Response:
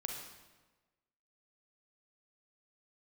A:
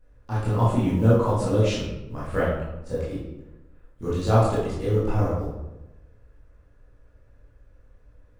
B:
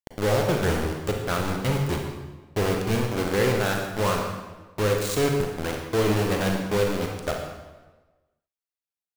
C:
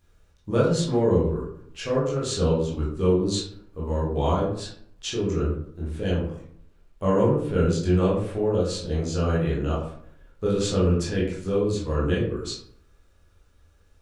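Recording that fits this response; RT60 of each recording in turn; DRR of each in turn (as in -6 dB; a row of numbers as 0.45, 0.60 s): B; 0.95, 1.3, 0.60 s; -9.5, 1.5, -6.5 dB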